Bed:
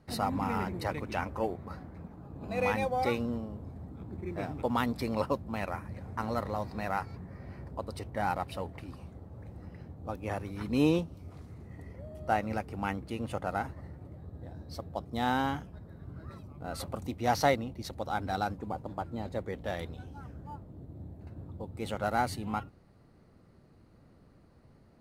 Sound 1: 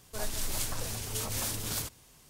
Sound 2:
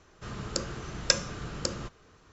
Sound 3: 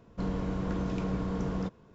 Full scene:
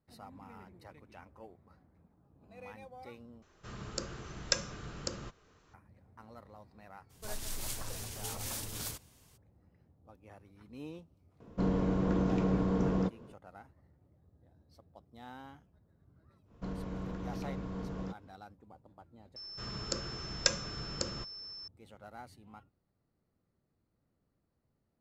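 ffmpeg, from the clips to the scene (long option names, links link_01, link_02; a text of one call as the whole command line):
ffmpeg -i bed.wav -i cue0.wav -i cue1.wav -i cue2.wav -filter_complex "[2:a]asplit=2[link_01][link_02];[3:a]asplit=2[link_03][link_04];[0:a]volume=-20dB[link_05];[link_03]equalizer=frequency=360:width_type=o:width=2.8:gain=6[link_06];[link_04]alimiter=level_in=1dB:limit=-24dB:level=0:latency=1:release=271,volume=-1dB[link_07];[link_02]aeval=exprs='val(0)+0.0112*sin(2*PI*5300*n/s)':channel_layout=same[link_08];[link_05]asplit=3[link_09][link_10][link_11];[link_09]atrim=end=3.424[link_12];[link_01]atrim=end=2.32,asetpts=PTS-STARTPTS,volume=-6.5dB[link_13];[link_10]atrim=start=5.736:end=19.364[link_14];[link_08]atrim=end=2.32,asetpts=PTS-STARTPTS,volume=-4.5dB[link_15];[link_11]atrim=start=21.676[link_16];[1:a]atrim=end=2.29,asetpts=PTS-STARTPTS,volume=-6dB,afade=type=in:duration=0.02,afade=type=out:start_time=2.27:duration=0.02,adelay=7090[link_17];[link_06]atrim=end=1.94,asetpts=PTS-STARTPTS,volume=-2dB,afade=type=in:duration=0.004:curve=hsin,afade=type=out:start_time=1.936:duration=0.004:curve=hsin,adelay=11400[link_18];[link_07]atrim=end=1.94,asetpts=PTS-STARTPTS,volume=-5.5dB,afade=type=in:duration=0.1,afade=type=out:start_time=1.84:duration=0.1,adelay=16440[link_19];[link_12][link_13]acrossfade=duration=0.004:curve1=hsin:curve2=hsin[link_20];[link_20][link_14]acrossfade=duration=0.004:curve1=hsin:curve2=hsin[link_21];[link_21][link_15]acrossfade=duration=0.004:curve1=hsin:curve2=hsin[link_22];[link_22][link_16]acrossfade=duration=0.004:curve1=hsin:curve2=hsin[link_23];[link_23][link_17][link_18][link_19]amix=inputs=4:normalize=0" out.wav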